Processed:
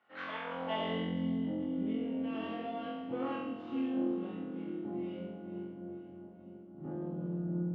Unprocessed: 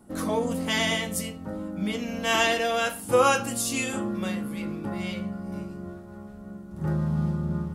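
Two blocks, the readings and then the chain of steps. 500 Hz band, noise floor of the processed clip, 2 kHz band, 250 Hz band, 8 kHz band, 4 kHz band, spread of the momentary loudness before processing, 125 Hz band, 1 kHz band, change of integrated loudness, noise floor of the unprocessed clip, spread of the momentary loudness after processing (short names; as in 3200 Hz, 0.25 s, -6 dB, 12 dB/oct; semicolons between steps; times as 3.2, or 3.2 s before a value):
-12.0 dB, -52 dBFS, -17.5 dB, -5.5 dB, under -40 dB, -17.5 dB, 17 LU, -11.0 dB, -13.5 dB, -11.0 dB, -43 dBFS, 11 LU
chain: tube stage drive 23 dB, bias 0.5; speaker cabinet 110–3800 Hz, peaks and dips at 220 Hz -7 dB, 330 Hz -4 dB, 730 Hz +3 dB, 3000 Hz +9 dB; split-band echo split 690 Hz, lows 0.616 s, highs 0.453 s, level -12 dB; band-pass sweep 1900 Hz -> 270 Hz, 0.38–1.02; on a send: flutter echo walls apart 3.9 m, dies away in 0.93 s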